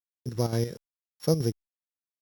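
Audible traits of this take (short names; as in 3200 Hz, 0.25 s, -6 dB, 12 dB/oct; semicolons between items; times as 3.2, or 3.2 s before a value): a buzz of ramps at a fixed pitch in blocks of 8 samples; chopped level 5.7 Hz, depth 60%, duty 65%; a quantiser's noise floor 10-bit, dither none; Opus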